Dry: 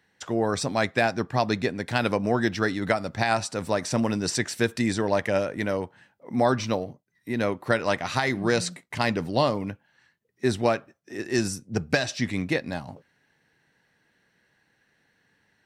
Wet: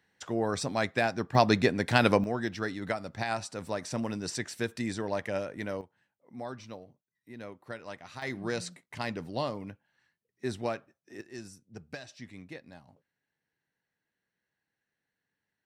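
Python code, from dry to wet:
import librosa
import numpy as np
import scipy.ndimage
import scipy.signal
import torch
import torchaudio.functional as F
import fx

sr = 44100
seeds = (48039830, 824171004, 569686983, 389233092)

y = fx.gain(x, sr, db=fx.steps((0.0, -5.0), (1.35, 1.5), (2.24, -8.5), (5.81, -18.0), (8.22, -10.0), (11.21, -19.0)))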